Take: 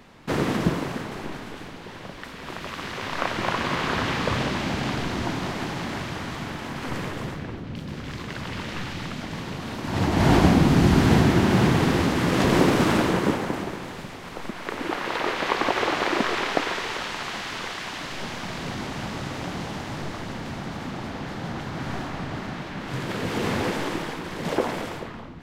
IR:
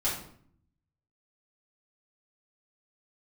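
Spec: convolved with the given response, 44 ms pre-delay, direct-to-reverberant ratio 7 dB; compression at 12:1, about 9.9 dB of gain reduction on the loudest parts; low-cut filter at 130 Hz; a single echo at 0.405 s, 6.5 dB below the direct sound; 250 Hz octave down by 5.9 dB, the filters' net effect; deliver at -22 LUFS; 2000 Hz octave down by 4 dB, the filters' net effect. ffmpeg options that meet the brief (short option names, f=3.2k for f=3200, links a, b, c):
-filter_complex "[0:a]highpass=130,equalizer=f=250:t=o:g=-7.5,equalizer=f=2k:t=o:g=-5,acompressor=threshold=-28dB:ratio=12,aecho=1:1:405:0.473,asplit=2[a][b];[1:a]atrim=start_sample=2205,adelay=44[c];[b][c]afir=irnorm=-1:irlink=0,volume=-14.5dB[d];[a][d]amix=inputs=2:normalize=0,volume=10.5dB"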